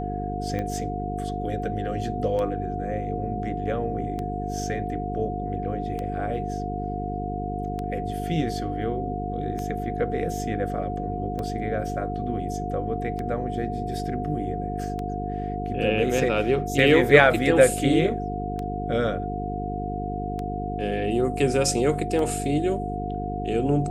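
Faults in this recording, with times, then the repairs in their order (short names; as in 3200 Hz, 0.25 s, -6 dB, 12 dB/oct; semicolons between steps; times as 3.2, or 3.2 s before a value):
buzz 50 Hz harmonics 9 -31 dBFS
tick 33 1/3 rpm -19 dBFS
tone 720 Hz -31 dBFS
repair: de-click; de-hum 50 Hz, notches 9; notch 720 Hz, Q 30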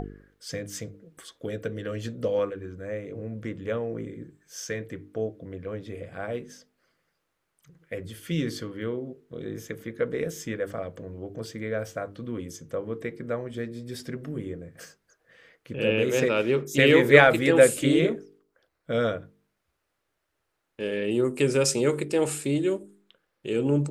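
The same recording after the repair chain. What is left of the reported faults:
none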